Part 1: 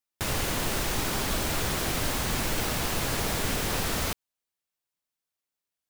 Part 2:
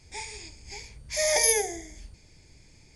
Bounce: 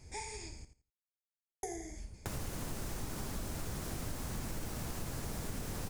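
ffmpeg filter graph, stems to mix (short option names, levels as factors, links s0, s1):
-filter_complex "[0:a]highshelf=f=11000:g=-9.5,acrossover=split=270|3000[s0][s1][s2];[s1]acompressor=threshold=0.0126:ratio=4[s3];[s0][s3][s2]amix=inputs=3:normalize=0,adelay=2050,volume=1[s4];[1:a]volume=1.12,asplit=3[s5][s6][s7];[s5]atrim=end=0.65,asetpts=PTS-STARTPTS,afade=t=out:st=0.646:d=0.004:c=hsin[s8];[s6]atrim=start=0.65:end=1.63,asetpts=PTS-STARTPTS,volume=0[s9];[s7]atrim=start=1.63,asetpts=PTS-STARTPTS,afade=t=in:d=0.004:c=hsin[s10];[s8][s9][s10]concat=n=3:v=0:a=1,asplit=2[s11][s12];[s12]volume=0.251,aecho=0:1:84|168|252:1|0.19|0.0361[s13];[s4][s11][s13]amix=inputs=3:normalize=0,equalizer=f=3400:t=o:w=1.6:g=-9.5,acompressor=threshold=0.01:ratio=2.5"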